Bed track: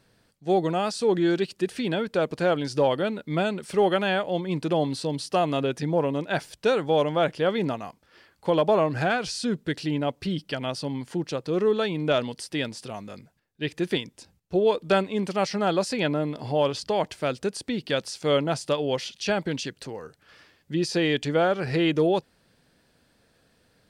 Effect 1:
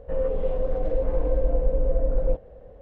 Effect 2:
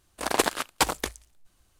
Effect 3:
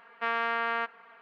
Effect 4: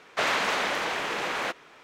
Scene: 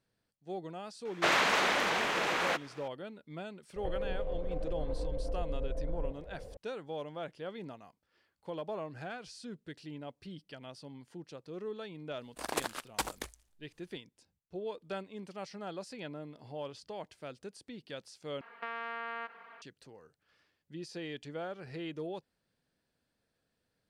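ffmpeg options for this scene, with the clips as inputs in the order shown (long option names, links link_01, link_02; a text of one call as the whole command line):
ffmpeg -i bed.wav -i cue0.wav -i cue1.wav -i cue2.wav -i cue3.wav -filter_complex "[0:a]volume=-18dB[link_01];[1:a]acompressor=threshold=-30dB:ratio=6:attack=3.2:release=140:knee=1:detection=peak[link_02];[3:a]acompressor=threshold=-34dB:ratio=6:attack=3.2:release=140:knee=1:detection=peak[link_03];[link_01]asplit=2[link_04][link_05];[link_04]atrim=end=18.414[link_06];[link_03]atrim=end=1.21[link_07];[link_05]atrim=start=19.616[link_08];[4:a]atrim=end=1.83,asetpts=PTS-STARTPTS,volume=-1.5dB,afade=type=in:duration=0.004:curve=hsin,afade=type=out:start_time=1.826:duration=0.004:curve=hsin,adelay=1050[link_09];[link_02]atrim=end=2.81,asetpts=PTS-STARTPTS,volume=-1.5dB,afade=type=in:duration=0.004:curve=hsin,afade=type=out:start_time=2.806:duration=0.004:curve=hsin,adelay=3760[link_10];[2:a]atrim=end=1.79,asetpts=PTS-STARTPTS,volume=-11dB,afade=type=in:duration=0.004:curve=hsin,afade=type=out:start_time=1.786:duration=0.004:curve=hsin,adelay=12180[link_11];[link_06][link_07]acrossfade=duration=0.004:curve1=hsin:curve2=hsin[link_12];[link_12][link_08]acrossfade=duration=0.004:curve1=hsin:curve2=hsin[link_13];[link_13][link_09][link_10][link_11]amix=inputs=4:normalize=0" out.wav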